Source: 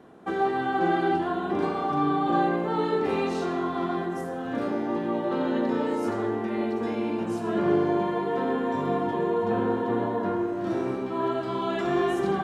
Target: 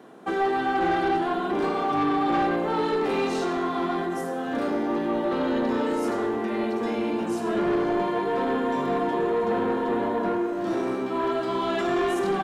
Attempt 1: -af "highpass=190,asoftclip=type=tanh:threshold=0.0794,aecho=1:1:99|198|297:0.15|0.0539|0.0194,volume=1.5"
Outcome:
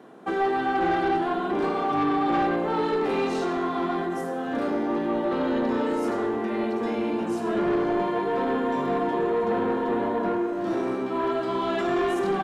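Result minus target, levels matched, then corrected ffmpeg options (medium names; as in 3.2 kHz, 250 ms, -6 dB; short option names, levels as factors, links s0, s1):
8 kHz band -3.5 dB
-af "highpass=190,highshelf=f=3600:g=4.5,asoftclip=type=tanh:threshold=0.0794,aecho=1:1:99|198|297:0.15|0.0539|0.0194,volume=1.5"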